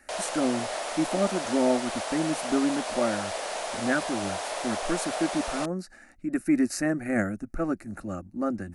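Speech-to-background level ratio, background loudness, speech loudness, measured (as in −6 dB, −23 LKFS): 3.0 dB, −32.5 LKFS, −29.5 LKFS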